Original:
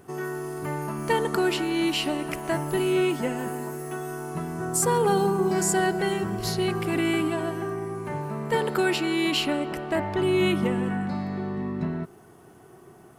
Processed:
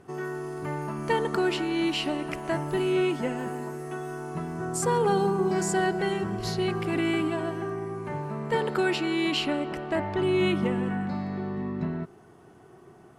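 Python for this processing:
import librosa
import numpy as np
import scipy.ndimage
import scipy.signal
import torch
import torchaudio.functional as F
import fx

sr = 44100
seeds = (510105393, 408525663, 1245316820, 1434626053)

y = fx.air_absorb(x, sr, metres=52.0)
y = F.gain(torch.from_numpy(y), -1.5).numpy()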